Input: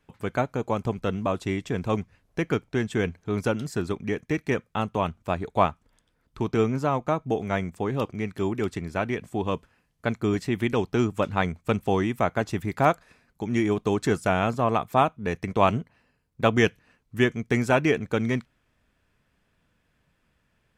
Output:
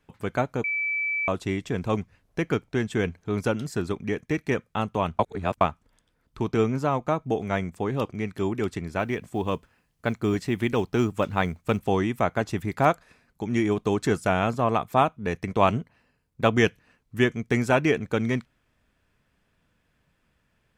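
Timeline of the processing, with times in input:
0.64–1.28 bleep 2310 Hz -24 dBFS
5.19–5.61 reverse
8.99–11.88 companded quantiser 8-bit

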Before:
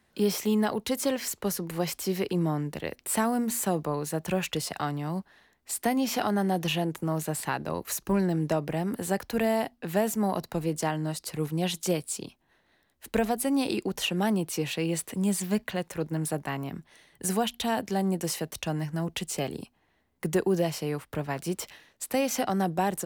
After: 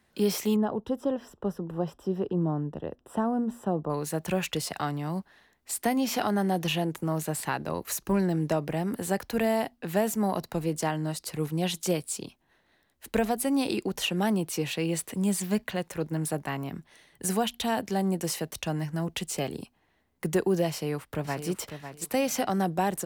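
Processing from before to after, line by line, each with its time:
0.56–3.9 running mean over 20 samples
20.69–21.49 echo throw 0.55 s, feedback 20%, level -9.5 dB

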